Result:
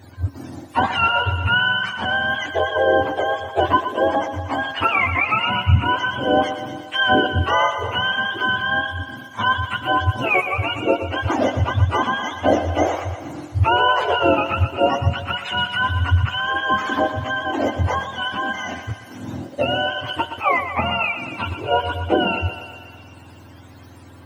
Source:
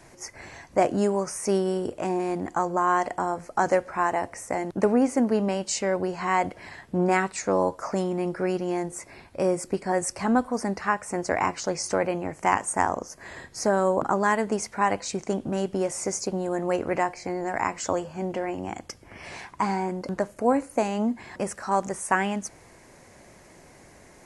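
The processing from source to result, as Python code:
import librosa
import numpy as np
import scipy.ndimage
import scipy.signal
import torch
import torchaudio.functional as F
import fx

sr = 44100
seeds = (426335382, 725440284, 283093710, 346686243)

y = fx.octave_mirror(x, sr, pivot_hz=750.0)
y = fx.echo_thinned(y, sr, ms=120, feedback_pct=67, hz=280.0, wet_db=-9.5)
y = y * librosa.db_to_amplitude(7.0)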